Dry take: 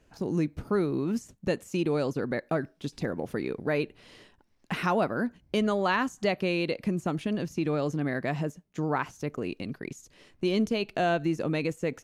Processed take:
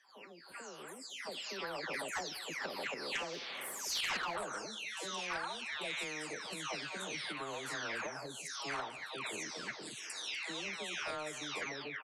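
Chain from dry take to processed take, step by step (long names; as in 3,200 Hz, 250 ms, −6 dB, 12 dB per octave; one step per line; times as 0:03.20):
every frequency bin delayed by itself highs early, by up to 621 ms
source passing by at 0:04.27, 40 m/s, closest 6.3 metres
camcorder AGC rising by 14 dB per second
high-pass filter 620 Hz 12 dB per octave
tilt shelving filter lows −3.5 dB
in parallel at −0.5 dB: downward compressor, threshold −46 dBFS, peak gain reduction 20 dB
on the sum: soft clipping −21 dBFS, distortion −21 dB
high-frequency loss of the air 74 metres
far-end echo of a speakerphone 190 ms, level −29 dB
every bin compressed towards the loudest bin 2 to 1
level −4.5 dB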